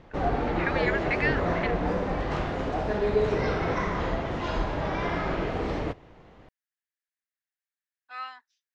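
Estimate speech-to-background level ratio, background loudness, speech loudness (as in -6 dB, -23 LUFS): -3.5 dB, -28.5 LUFS, -32.0 LUFS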